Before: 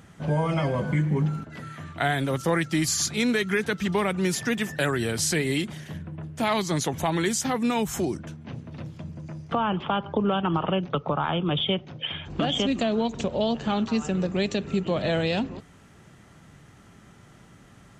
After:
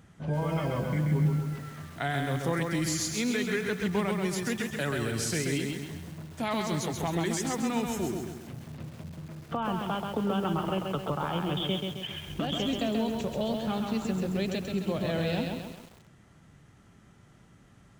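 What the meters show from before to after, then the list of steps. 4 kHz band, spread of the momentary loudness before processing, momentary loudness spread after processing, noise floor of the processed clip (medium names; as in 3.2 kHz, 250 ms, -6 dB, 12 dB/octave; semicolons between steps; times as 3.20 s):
-5.5 dB, 14 LU, 11 LU, -57 dBFS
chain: bass shelf 220 Hz +4 dB; bit-crushed delay 133 ms, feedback 55%, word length 7-bit, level -3.5 dB; trim -7.5 dB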